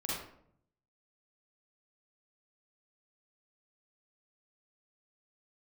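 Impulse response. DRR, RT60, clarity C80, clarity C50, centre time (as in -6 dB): -7.0 dB, 0.65 s, 3.0 dB, -2.5 dB, 69 ms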